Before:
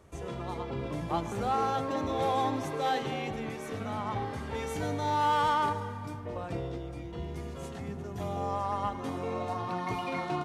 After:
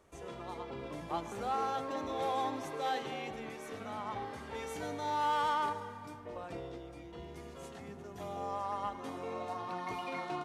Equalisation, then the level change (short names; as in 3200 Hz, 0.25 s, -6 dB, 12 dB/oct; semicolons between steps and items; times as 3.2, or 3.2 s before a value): bell 100 Hz -10 dB 2.1 oct; -4.5 dB